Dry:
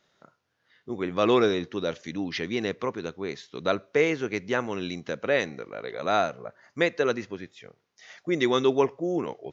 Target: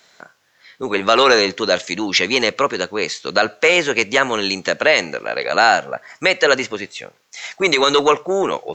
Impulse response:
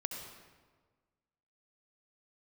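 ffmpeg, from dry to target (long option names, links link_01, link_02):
-filter_complex "[0:a]acrossover=split=520|1300[link_01][link_02][link_03];[link_01]asoftclip=type=tanh:threshold=-26dB[link_04];[link_04][link_02][link_03]amix=inputs=3:normalize=0,lowshelf=frequency=430:gain=-11,asetrate=48000,aresample=44100,highshelf=frequency=6300:gain=4.5,alimiter=level_in=18.5dB:limit=-1dB:release=50:level=0:latency=1,volume=-1.5dB"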